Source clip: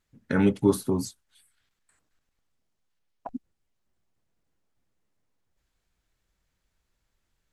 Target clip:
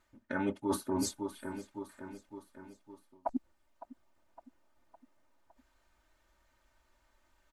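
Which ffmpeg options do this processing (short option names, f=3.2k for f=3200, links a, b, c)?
-af "equalizer=f=920:w=0.57:g=11,aecho=1:1:3.3:0.68,aecho=1:1:560|1120|1680|2240:0.075|0.0405|0.0219|0.0118,areverse,acompressor=threshold=-30dB:ratio=8,areverse"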